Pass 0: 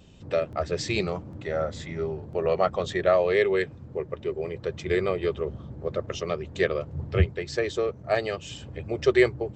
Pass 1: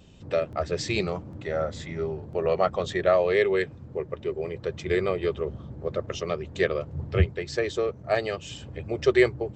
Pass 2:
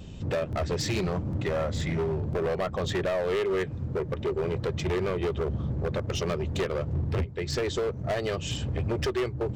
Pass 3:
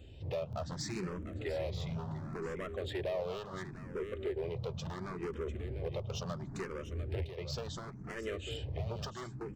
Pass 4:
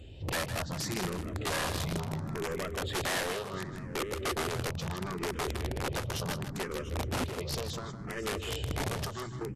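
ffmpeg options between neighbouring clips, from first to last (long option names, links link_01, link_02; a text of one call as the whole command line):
ffmpeg -i in.wav -af anull out.wav
ffmpeg -i in.wav -af "lowshelf=frequency=230:gain=7.5,acompressor=threshold=-27dB:ratio=6,asoftclip=type=hard:threshold=-29.5dB,volume=5.5dB" out.wav
ffmpeg -i in.wav -filter_complex "[0:a]aecho=1:1:698:0.299,asplit=2[link_01][link_02];[link_02]afreqshift=0.71[link_03];[link_01][link_03]amix=inputs=2:normalize=1,volume=-7.5dB" out.wav
ffmpeg -i in.wav -af "aeval=exprs='(mod(37.6*val(0)+1,2)-1)/37.6':channel_layout=same,aecho=1:1:157:0.316,volume=4.5dB" -ar 32000 -c:a libvorbis -b:a 48k out.ogg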